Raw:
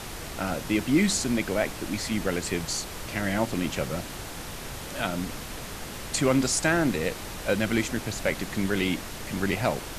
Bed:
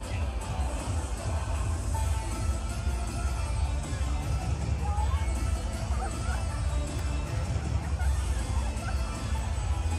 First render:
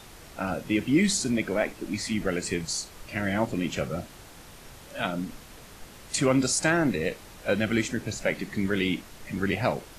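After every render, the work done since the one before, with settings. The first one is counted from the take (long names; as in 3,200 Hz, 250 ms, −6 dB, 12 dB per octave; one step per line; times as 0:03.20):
noise reduction from a noise print 10 dB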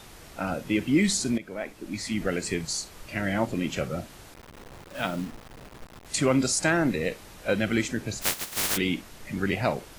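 0:01.38–0:02.22: fade in, from −14.5 dB
0:04.34–0:06.06: hold until the input has moved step −39.5 dBFS
0:08.21–0:08.76: compressing power law on the bin magnitudes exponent 0.1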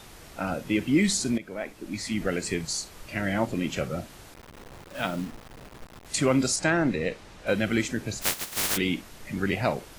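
0:06.56–0:07.47: high-frequency loss of the air 62 metres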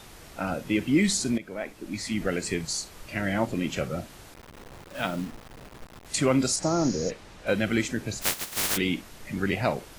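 0:06.65–0:07.08: healed spectral selection 1,400–6,900 Hz before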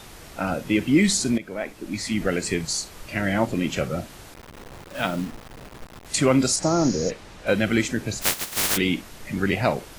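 level +4 dB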